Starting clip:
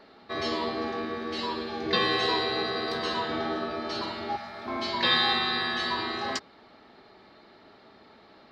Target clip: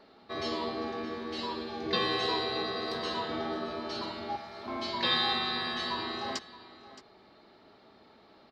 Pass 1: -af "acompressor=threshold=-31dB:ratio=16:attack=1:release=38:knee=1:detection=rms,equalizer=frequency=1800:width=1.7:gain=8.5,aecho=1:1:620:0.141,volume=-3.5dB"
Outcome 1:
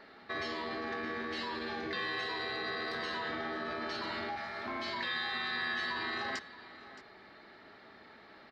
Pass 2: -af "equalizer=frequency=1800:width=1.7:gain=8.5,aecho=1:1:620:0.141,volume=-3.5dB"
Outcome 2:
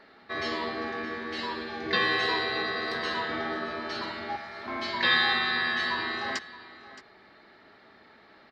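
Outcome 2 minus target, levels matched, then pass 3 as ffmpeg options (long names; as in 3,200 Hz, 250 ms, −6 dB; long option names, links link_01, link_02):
2,000 Hz band +6.5 dB
-af "equalizer=frequency=1800:width=1.7:gain=-3.5,aecho=1:1:620:0.141,volume=-3.5dB"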